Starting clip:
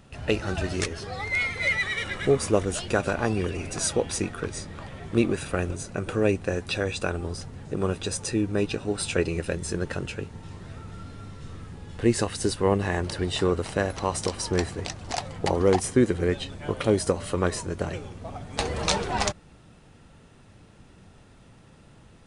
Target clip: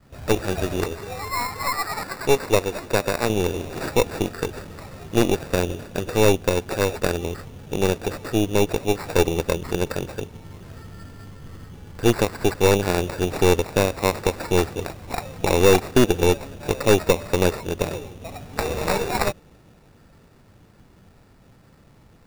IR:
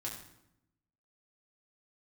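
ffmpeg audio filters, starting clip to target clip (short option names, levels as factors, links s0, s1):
-filter_complex "[0:a]adynamicequalizer=threshold=0.0158:dfrequency=470:dqfactor=1.3:tfrequency=470:tqfactor=1.3:attack=5:release=100:ratio=0.375:range=3.5:mode=boostabove:tftype=bell,aresample=16000,aresample=44100,asettb=1/sr,asplit=3[s0][s1][s2];[s0]atrim=end=1.634[s3];[s1]atrim=start=1.63:end=3.3,asetpts=PTS-STARTPTS,afade=t=in:d=0.004:c=qsin,afade=t=out:st=1.666:d=0.004:c=qsin,lowshelf=f=270:g=-10[s4];[s2]atrim=start=3.296[s5];[s3][s4]acrossfade=d=0.004:c1=hsin:c2=qsin[s6];[s6][s5]acrossfade=d=0.004:c1=qsin:c2=hsin,acrusher=samples=14:mix=1:aa=0.000001,aeval=exprs='0.447*(cos(1*acos(clip(val(0)/0.447,-1,1)))-cos(1*PI/2))+0.1*(cos(4*acos(clip(val(0)/0.447,-1,1)))-cos(4*PI/2))':c=same"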